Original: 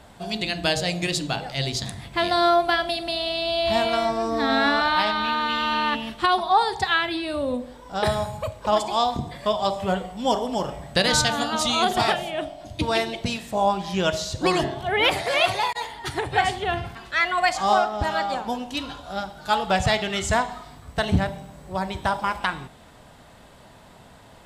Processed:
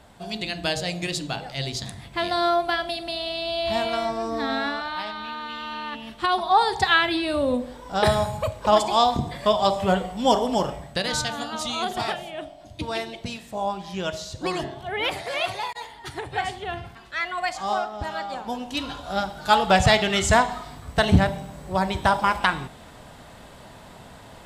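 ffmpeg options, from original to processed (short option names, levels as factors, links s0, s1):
-af "volume=9.44,afade=t=out:st=4.35:d=0.48:silence=0.473151,afade=t=in:st=5.91:d=0.97:silence=0.237137,afade=t=out:st=10.59:d=0.4:silence=0.354813,afade=t=in:st=18.31:d=0.87:silence=0.316228"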